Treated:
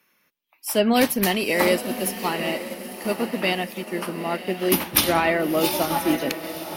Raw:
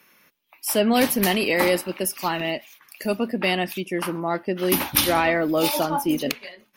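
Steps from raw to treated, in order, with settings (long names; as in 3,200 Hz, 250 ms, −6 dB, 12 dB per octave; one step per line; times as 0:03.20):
feedback delay with all-pass diffusion 919 ms, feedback 55%, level −7.5 dB
expander for the loud parts 1.5 to 1, over −35 dBFS
level +1.5 dB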